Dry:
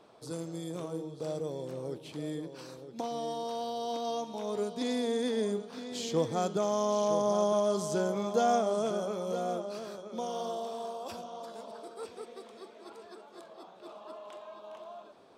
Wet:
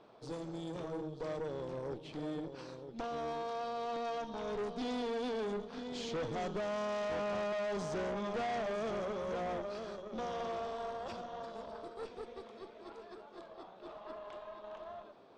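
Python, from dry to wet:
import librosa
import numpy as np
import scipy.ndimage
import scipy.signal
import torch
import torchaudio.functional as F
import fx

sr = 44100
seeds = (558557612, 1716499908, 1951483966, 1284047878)

y = fx.tube_stage(x, sr, drive_db=37.0, bias=0.7)
y = fx.air_absorb(y, sr, metres=120.0)
y = y * librosa.db_to_amplitude(3.0)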